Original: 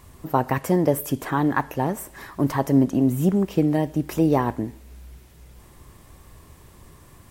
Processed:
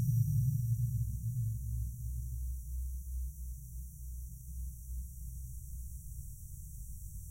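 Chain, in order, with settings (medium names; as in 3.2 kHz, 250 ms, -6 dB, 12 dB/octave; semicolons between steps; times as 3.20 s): brick-wall FIR band-stop 180–5600 Hz; Paulstretch 5.3×, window 1.00 s, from 4.54 s; trim +3 dB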